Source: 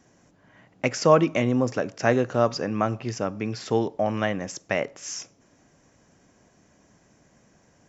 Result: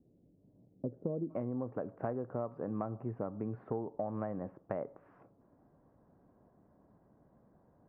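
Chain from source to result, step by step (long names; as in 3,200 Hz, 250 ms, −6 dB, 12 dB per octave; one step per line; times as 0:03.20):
inverse Chebyshev low-pass filter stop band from 2,800 Hz, stop band 80 dB, from 0:01.29 stop band from 6,400 Hz
downward compressor 10 to 1, threshold −27 dBFS, peak gain reduction 12.5 dB
level −5.5 dB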